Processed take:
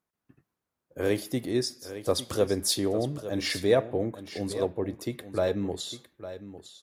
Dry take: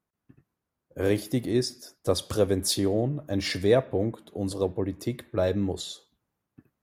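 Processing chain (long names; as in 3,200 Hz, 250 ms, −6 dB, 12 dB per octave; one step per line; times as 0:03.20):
low-shelf EQ 240 Hz −6.5 dB
on a send: single-tap delay 855 ms −13 dB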